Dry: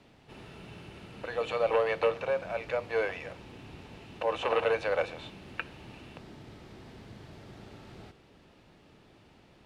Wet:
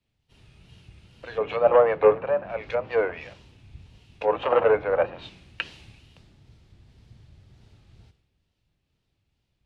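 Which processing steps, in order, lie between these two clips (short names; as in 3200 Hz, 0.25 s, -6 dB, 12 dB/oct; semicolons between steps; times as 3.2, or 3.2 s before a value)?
wow and flutter 120 cents; treble ducked by the level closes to 1500 Hz, closed at -27 dBFS; three-band expander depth 100%; gain +4 dB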